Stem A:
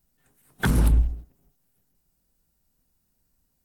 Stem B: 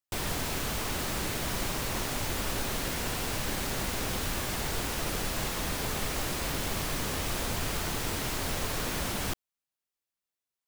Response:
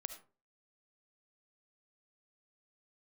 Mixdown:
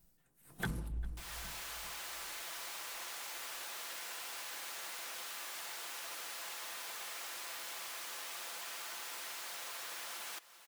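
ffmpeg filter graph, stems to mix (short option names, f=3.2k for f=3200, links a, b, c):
-filter_complex "[0:a]tremolo=f=1.7:d=0.79,volume=2dB,asplit=2[a][b];[b]volume=-21dB[c];[1:a]highpass=890,adelay=1050,volume=-4.5dB,asplit=2[d][e];[e]volume=-20dB[f];[c][f]amix=inputs=2:normalize=0,aecho=0:1:396|792|1188|1584|1980:1|0.35|0.122|0.0429|0.015[g];[a][d][g]amix=inputs=3:normalize=0,aecho=1:1:5.9:0.34,acompressor=threshold=-44dB:ratio=2.5"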